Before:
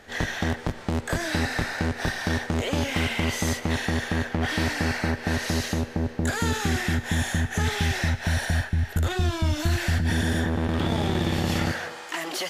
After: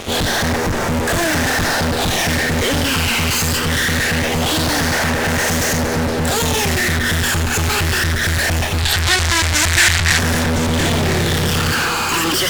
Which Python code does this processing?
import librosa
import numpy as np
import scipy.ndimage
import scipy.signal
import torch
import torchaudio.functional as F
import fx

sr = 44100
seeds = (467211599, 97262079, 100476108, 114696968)

p1 = fx.phaser_stages(x, sr, stages=12, low_hz=600.0, high_hz=4000.0, hz=0.23, feedback_pct=5)
p2 = fx.fuzz(p1, sr, gain_db=50.0, gate_db=-52.0)
p3 = fx.graphic_eq(p2, sr, hz=(250, 500, 2000, 4000, 8000), db=(-8, -7, 8, 8, 8), at=(8.78, 10.19))
p4 = p3 + fx.echo_single(p3, sr, ms=1011, db=-12.0, dry=0)
y = F.gain(torch.from_numpy(p4), -3.0).numpy()